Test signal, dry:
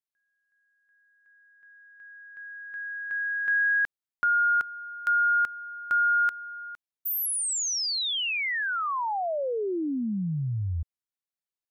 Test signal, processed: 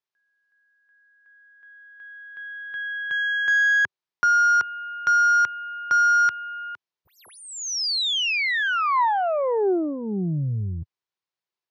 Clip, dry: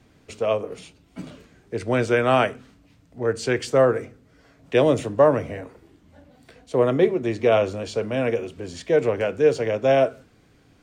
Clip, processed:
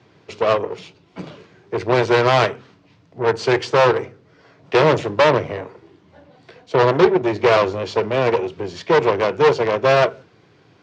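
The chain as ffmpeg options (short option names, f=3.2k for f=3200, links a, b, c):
-af "asoftclip=type=tanh:threshold=-14.5dB,aeval=exprs='0.188*(cos(1*acos(clip(val(0)/0.188,-1,1)))-cos(1*PI/2))+0.00841*(cos(2*acos(clip(val(0)/0.188,-1,1)))-cos(2*PI/2))+0.075*(cos(4*acos(clip(val(0)/0.188,-1,1)))-cos(4*PI/2))+0.0596*(cos(6*acos(clip(val(0)/0.188,-1,1)))-cos(6*PI/2))+0.00119*(cos(8*acos(clip(val(0)/0.188,-1,1)))-cos(8*PI/2))':c=same,highpass=f=100:w=0.5412,highpass=f=100:w=1.3066,equalizer=f=250:t=q:w=4:g=-10,equalizer=f=380:t=q:w=4:g=5,equalizer=f=980:t=q:w=4:g=5,lowpass=f=5.6k:w=0.5412,lowpass=f=5.6k:w=1.3066,volume=5dB"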